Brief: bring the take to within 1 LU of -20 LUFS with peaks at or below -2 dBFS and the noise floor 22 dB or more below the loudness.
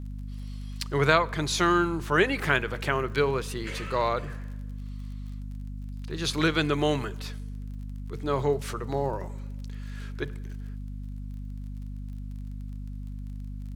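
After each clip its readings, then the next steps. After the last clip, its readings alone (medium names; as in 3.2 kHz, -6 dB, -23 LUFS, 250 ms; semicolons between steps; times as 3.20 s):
tick rate 36 per s; hum 50 Hz; highest harmonic 250 Hz; hum level -34 dBFS; loudness -28.0 LUFS; peak level -4.5 dBFS; loudness target -20.0 LUFS
-> de-click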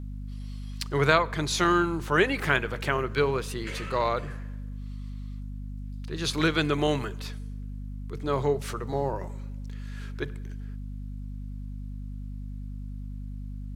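tick rate 0 per s; hum 50 Hz; highest harmonic 250 Hz; hum level -34 dBFS
-> hum notches 50/100/150/200/250 Hz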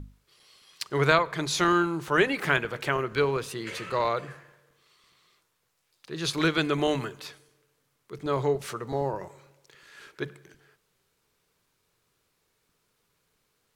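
hum not found; loudness -27.0 LUFS; peak level -4.5 dBFS; loudness target -20.0 LUFS
-> trim +7 dB; peak limiter -2 dBFS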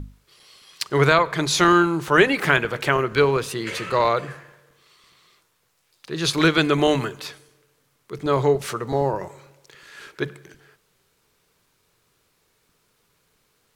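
loudness -20.5 LUFS; peak level -2.0 dBFS; noise floor -67 dBFS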